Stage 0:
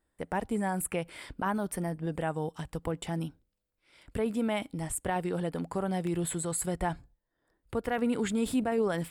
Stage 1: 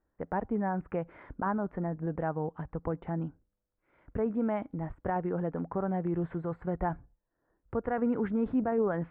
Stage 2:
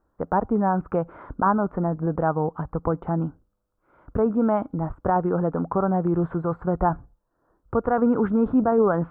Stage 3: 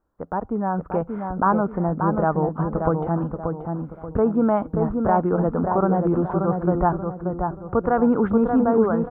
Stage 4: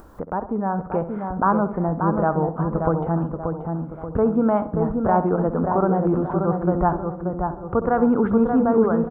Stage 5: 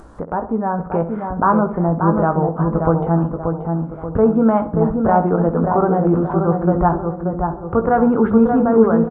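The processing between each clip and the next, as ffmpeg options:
-af "lowpass=f=1.6k:w=0.5412,lowpass=f=1.6k:w=1.3066"
-af "highshelf=f=1.6k:t=q:w=3:g=-6.5,volume=8.5dB"
-filter_complex "[0:a]dynaudnorm=f=330:g=5:m=7dB,asplit=2[a][b];[b]adelay=582,lowpass=f=1.6k:p=1,volume=-4.5dB,asplit=2[c][d];[d]adelay=582,lowpass=f=1.6k:p=1,volume=0.39,asplit=2[e][f];[f]adelay=582,lowpass=f=1.6k:p=1,volume=0.39,asplit=2[g][h];[h]adelay=582,lowpass=f=1.6k:p=1,volume=0.39,asplit=2[i][j];[j]adelay=582,lowpass=f=1.6k:p=1,volume=0.39[k];[a][c][e][g][i][k]amix=inputs=6:normalize=0,volume=-4.5dB"
-filter_complex "[0:a]asplit=2[a][b];[b]adelay=66,lowpass=f=1.9k:p=1,volume=-12dB,asplit=2[c][d];[d]adelay=66,lowpass=f=1.9k:p=1,volume=0.48,asplit=2[e][f];[f]adelay=66,lowpass=f=1.9k:p=1,volume=0.48,asplit=2[g][h];[h]adelay=66,lowpass=f=1.9k:p=1,volume=0.48,asplit=2[i][j];[j]adelay=66,lowpass=f=1.9k:p=1,volume=0.48[k];[a][c][e][g][i][k]amix=inputs=6:normalize=0,acompressor=mode=upward:threshold=-25dB:ratio=2.5"
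-filter_complex "[0:a]asplit=2[a][b];[b]adelay=18,volume=-8dB[c];[a][c]amix=inputs=2:normalize=0,aresample=22050,aresample=44100,volume=3.5dB"

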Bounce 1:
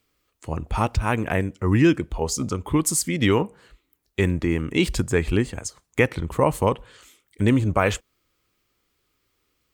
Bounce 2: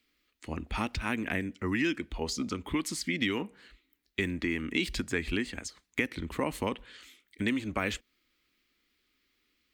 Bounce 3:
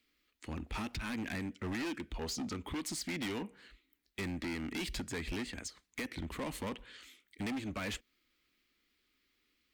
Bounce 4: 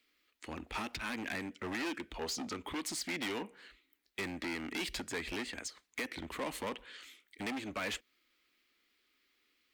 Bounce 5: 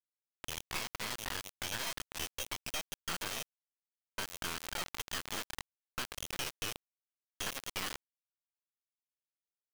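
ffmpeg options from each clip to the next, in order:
-filter_complex "[0:a]equalizer=f=125:t=o:w=1:g=-10,equalizer=f=250:t=o:w=1:g=9,equalizer=f=500:t=o:w=1:g=-4,equalizer=f=1k:t=o:w=1:g=-4,equalizer=f=2k:t=o:w=1:g=8,equalizer=f=4k:t=o:w=1:g=7,equalizer=f=8k:t=o:w=1:g=-3,acrossover=split=500|5100[a][b][c];[a]acompressor=threshold=-25dB:ratio=4[d];[b]acompressor=threshold=-24dB:ratio=4[e];[c]acompressor=threshold=-35dB:ratio=4[f];[d][e][f]amix=inputs=3:normalize=0,volume=-6.5dB"
-af "volume=32.5dB,asoftclip=hard,volume=-32.5dB,volume=-2.5dB"
-af "bass=f=250:g=-12,treble=f=4k:g=-2,volume=3dB"
-filter_complex "[0:a]lowpass=f=3k:t=q:w=0.5098,lowpass=f=3k:t=q:w=0.6013,lowpass=f=3k:t=q:w=0.9,lowpass=f=3k:t=q:w=2.563,afreqshift=-3500,acrossover=split=690|2700[a][b][c];[a]acompressor=threshold=-56dB:ratio=4[d];[b]acompressor=threshold=-46dB:ratio=4[e];[c]acompressor=threshold=-54dB:ratio=4[f];[d][e][f]amix=inputs=3:normalize=0,acrusher=bits=4:dc=4:mix=0:aa=0.000001,volume=9dB"

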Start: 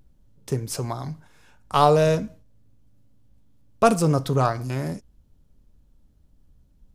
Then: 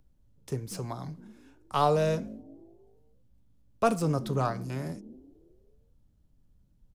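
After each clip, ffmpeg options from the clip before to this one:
-filter_complex "[0:a]acrossover=split=330|850|3400[a][b][c][d];[a]asplit=6[e][f][g][h][i][j];[f]adelay=191,afreqshift=59,volume=-11dB[k];[g]adelay=382,afreqshift=118,volume=-18.1dB[l];[h]adelay=573,afreqshift=177,volume=-25.3dB[m];[i]adelay=764,afreqshift=236,volume=-32.4dB[n];[j]adelay=955,afreqshift=295,volume=-39.5dB[o];[e][k][l][m][n][o]amix=inputs=6:normalize=0[p];[d]asoftclip=type=tanh:threshold=-27.5dB[q];[p][b][c][q]amix=inputs=4:normalize=0,volume=-7.5dB"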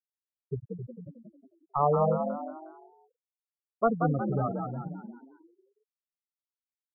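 -filter_complex "[0:a]afftfilt=real='re*gte(hypot(re,im),0.158)':imag='im*gte(hypot(re,im),0.158)':win_size=1024:overlap=0.75,asplit=2[a][b];[b]asplit=5[c][d][e][f][g];[c]adelay=181,afreqshift=53,volume=-5dB[h];[d]adelay=362,afreqshift=106,volume=-12.5dB[i];[e]adelay=543,afreqshift=159,volume=-20.1dB[j];[f]adelay=724,afreqshift=212,volume=-27.6dB[k];[g]adelay=905,afreqshift=265,volume=-35.1dB[l];[h][i][j][k][l]amix=inputs=5:normalize=0[m];[a][m]amix=inputs=2:normalize=0"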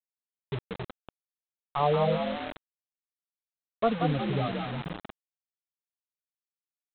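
-af "lowpass=1.2k,aresample=8000,acrusher=bits=5:mix=0:aa=0.000001,aresample=44100"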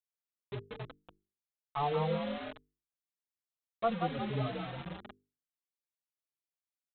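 -filter_complex "[0:a]bandreject=f=50:t=h:w=6,bandreject=f=100:t=h:w=6,bandreject=f=150:t=h:w=6,bandreject=f=200:t=h:w=6,bandreject=f=250:t=h:w=6,bandreject=f=300:t=h:w=6,bandreject=f=350:t=h:w=6,bandreject=f=400:t=h:w=6,bandreject=f=450:t=h:w=6,asplit=2[a][b];[b]adelay=4.1,afreqshift=1.1[c];[a][c]amix=inputs=2:normalize=1,volume=-3dB"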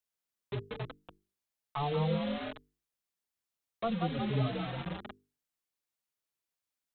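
-filter_complex "[0:a]acrossover=split=330|3000[a][b][c];[b]acompressor=threshold=-44dB:ratio=2[d];[a][d][c]amix=inputs=3:normalize=0,volume=4.5dB"

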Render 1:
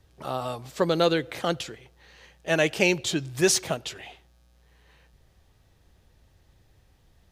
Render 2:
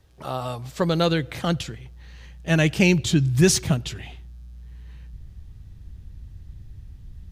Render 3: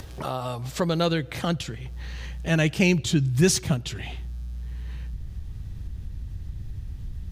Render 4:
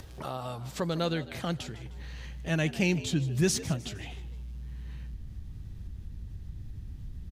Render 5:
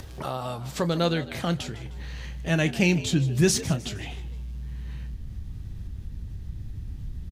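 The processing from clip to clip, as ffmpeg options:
-af "asubboost=boost=10.5:cutoff=180,volume=1.5dB"
-af "acompressor=mode=upward:threshold=-21dB:ratio=2.5,volume=-2.5dB"
-filter_complex "[0:a]asplit=5[a][b][c][d][e];[b]adelay=154,afreqshift=77,volume=-16.5dB[f];[c]adelay=308,afreqshift=154,volume=-23.4dB[g];[d]adelay=462,afreqshift=231,volume=-30.4dB[h];[e]adelay=616,afreqshift=308,volume=-37.3dB[i];[a][f][g][h][i]amix=inputs=5:normalize=0,volume=-6.5dB"
-filter_complex "[0:a]asplit=2[a][b];[b]adelay=29,volume=-14dB[c];[a][c]amix=inputs=2:normalize=0,volume=5dB"

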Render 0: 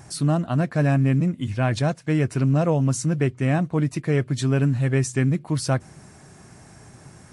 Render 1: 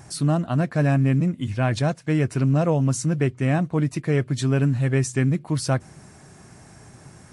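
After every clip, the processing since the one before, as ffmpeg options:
-af anull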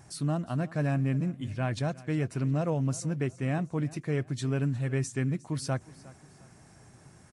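-af "aecho=1:1:358|716|1074:0.1|0.037|0.0137,volume=-8.5dB"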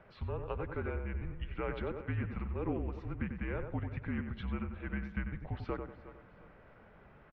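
-filter_complex "[0:a]acompressor=threshold=-30dB:ratio=6,asplit=2[a][b];[b]adelay=94,lowpass=f=1.7k:p=1,volume=-5.5dB,asplit=2[c][d];[d]adelay=94,lowpass=f=1.7k:p=1,volume=0.36,asplit=2[e][f];[f]adelay=94,lowpass=f=1.7k:p=1,volume=0.36,asplit=2[g][h];[h]adelay=94,lowpass=f=1.7k:p=1,volume=0.36[i];[a][c][e][g][i]amix=inputs=5:normalize=0,highpass=f=230:t=q:w=0.5412,highpass=f=230:t=q:w=1.307,lowpass=f=3.1k:t=q:w=0.5176,lowpass=f=3.1k:t=q:w=0.7071,lowpass=f=3.1k:t=q:w=1.932,afreqshift=-200,volume=1dB"

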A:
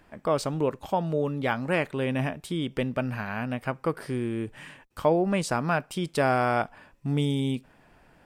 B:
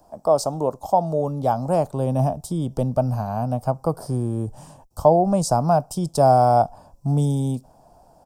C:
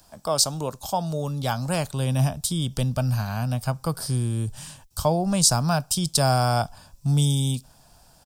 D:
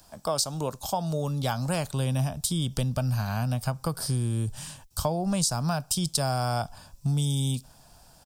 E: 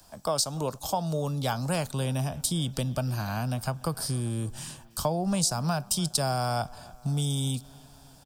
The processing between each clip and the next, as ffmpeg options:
-filter_complex "[0:a]firequalizer=gain_entry='entry(410,0);entry(700,13);entry(1900,-23);entry(5200,8)':delay=0.05:min_phase=1,acrossover=split=160|660|2700[a][b][c][d];[a]dynaudnorm=f=560:g=5:m=12dB[e];[e][b][c][d]amix=inputs=4:normalize=0"
-af "firequalizer=gain_entry='entry(110,0);entry(300,-8);entry(720,-11);entry(1600,9);entry(3700,15);entry(5400,9)':delay=0.05:min_phase=1,volume=1.5dB"
-af "acompressor=threshold=-23dB:ratio=6"
-filter_complex "[0:a]acrossover=split=140|4100[a][b][c];[a]asoftclip=type=tanh:threshold=-36dB[d];[b]aecho=1:1:293|586|879|1172|1465:0.0841|0.0505|0.0303|0.0182|0.0109[e];[d][e][c]amix=inputs=3:normalize=0"

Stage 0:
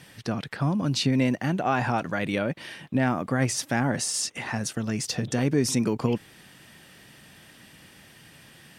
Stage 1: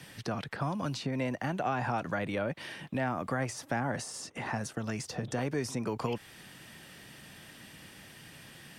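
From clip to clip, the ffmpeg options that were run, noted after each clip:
-filter_complex "[0:a]acrossover=split=110|530|1400[a][b][c][d];[a]acompressor=threshold=-43dB:ratio=4[e];[b]acompressor=threshold=-38dB:ratio=4[f];[c]acompressor=threshold=-32dB:ratio=4[g];[d]acompressor=threshold=-43dB:ratio=4[h];[e][f][g][h]amix=inputs=4:normalize=0"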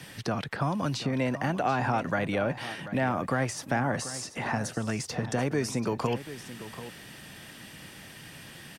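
-af "aecho=1:1:737:0.211,volume=4.5dB"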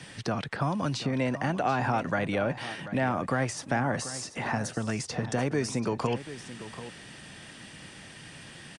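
-af "aresample=22050,aresample=44100"

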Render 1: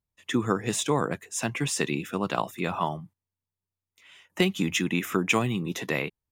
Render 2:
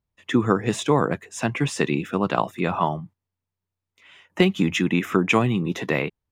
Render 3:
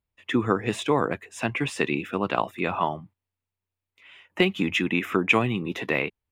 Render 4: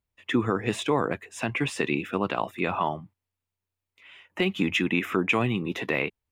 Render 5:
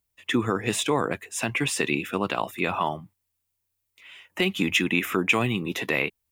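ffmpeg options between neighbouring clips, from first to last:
-af "lowpass=f=2.3k:p=1,volume=6dB"
-af "equalizer=f=160:t=o:w=0.67:g=-6,equalizer=f=2.5k:t=o:w=0.67:g=5,equalizer=f=6.3k:t=o:w=0.67:g=-6,volume=-2.5dB"
-af "alimiter=limit=-12.5dB:level=0:latency=1:release=40"
-af "crystalizer=i=2.5:c=0"

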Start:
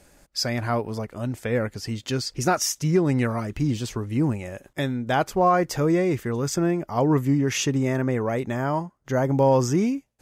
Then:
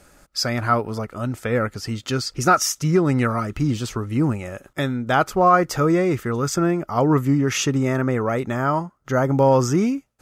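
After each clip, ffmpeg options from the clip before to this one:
-af "equalizer=f=1.3k:w=6:g=12,volume=2.5dB"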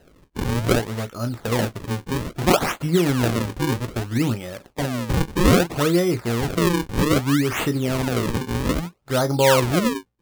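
-filter_complex "[0:a]asplit=2[a][b];[b]aecho=0:1:17|35:0.335|0.237[c];[a][c]amix=inputs=2:normalize=0,acrusher=samples=38:mix=1:aa=0.000001:lfo=1:lforange=60.8:lforate=0.62,volume=-1.5dB"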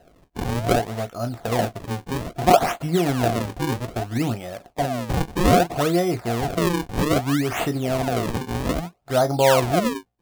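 -af "equalizer=f=700:w=5.4:g=15,volume=-2.5dB"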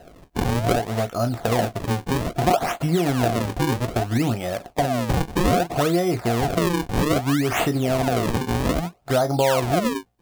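-af "acompressor=threshold=-27dB:ratio=3,volume=7.5dB"

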